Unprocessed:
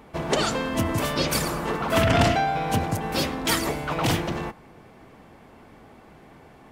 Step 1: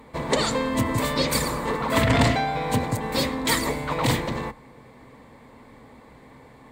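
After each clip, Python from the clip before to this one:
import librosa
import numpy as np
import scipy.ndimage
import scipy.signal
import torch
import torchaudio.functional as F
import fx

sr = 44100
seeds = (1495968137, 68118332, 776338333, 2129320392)

y = fx.ripple_eq(x, sr, per_octave=1.0, db=8)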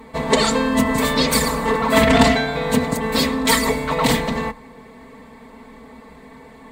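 y = x + 0.84 * np.pad(x, (int(4.5 * sr / 1000.0), 0))[:len(x)]
y = F.gain(torch.from_numpy(y), 3.5).numpy()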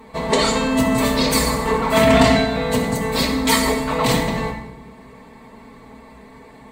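y = fx.rev_fdn(x, sr, rt60_s=0.86, lf_ratio=1.5, hf_ratio=0.9, size_ms=49.0, drr_db=1.5)
y = F.gain(torch.from_numpy(y), -2.5).numpy()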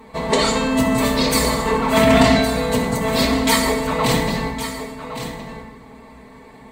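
y = x + 10.0 ** (-11.0 / 20.0) * np.pad(x, (int(1113 * sr / 1000.0), 0))[:len(x)]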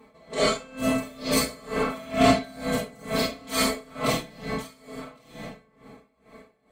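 y = fx.notch_comb(x, sr, f0_hz=930.0)
y = fx.rev_freeverb(y, sr, rt60_s=0.47, hf_ratio=0.7, predelay_ms=5, drr_db=-5.0)
y = y * 10.0 ** (-24 * (0.5 - 0.5 * np.cos(2.0 * np.pi * 2.2 * np.arange(len(y)) / sr)) / 20.0)
y = F.gain(torch.from_numpy(y), -8.0).numpy()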